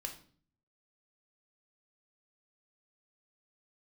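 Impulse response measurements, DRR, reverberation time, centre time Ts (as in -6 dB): 3.0 dB, 0.45 s, 14 ms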